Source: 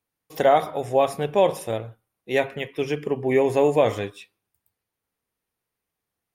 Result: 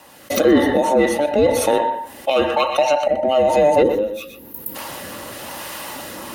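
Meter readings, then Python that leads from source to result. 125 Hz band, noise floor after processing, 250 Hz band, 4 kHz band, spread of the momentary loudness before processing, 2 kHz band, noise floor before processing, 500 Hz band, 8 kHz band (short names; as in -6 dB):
-1.5 dB, -41 dBFS, +9.0 dB, +9.5 dB, 12 LU, +6.0 dB, -85 dBFS, +5.5 dB, +13.5 dB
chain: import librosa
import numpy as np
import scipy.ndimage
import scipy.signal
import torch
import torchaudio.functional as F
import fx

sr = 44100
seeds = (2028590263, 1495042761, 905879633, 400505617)

p1 = fx.band_invert(x, sr, width_hz=1000)
p2 = fx.recorder_agc(p1, sr, target_db=-15.0, rise_db_per_s=42.0, max_gain_db=30)
p3 = fx.high_shelf(p2, sr, hz=7500.0, db=-4.5)
p4 = fx.notch(p3, sr, hz=2300.0, q=25.0)
p5 = 10.0 ** (-16.5 / 20.0) * np.tanh(p4 / 10.0 ** (-16.5 / 20.0))
p6 = p4 + F.gain(torch.from_numpy(p5), -4.0).numpy()
p7 = fx.spec_box(p6, sr, start_s=3.82, length_s=0.94, low_hz=550.0, high_hz=11000.0, gain_db=-19)
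p8 = scipy.signal.sosfilt(scipy.signal.butter(2, 81.0, 'highpass', fs=sr, output='sos'), p7)
p9 = fx.peak_eq(p8, sr, hz=1100.0, db=6.0, octaves=0.23)
p10 = p9 + 0.3 * np.pad(p9, (int(3.6 * sr / 1000.0), 0))[:len(p9)]
p11 = fx.rotary(p10, sr, hz=1.0)
p12 = p11 + fx.echo_single(p11, sr, ms=123, db=-16.0, dry=0)
y = fx.env_flatten(p12, sr, amount_pct=50)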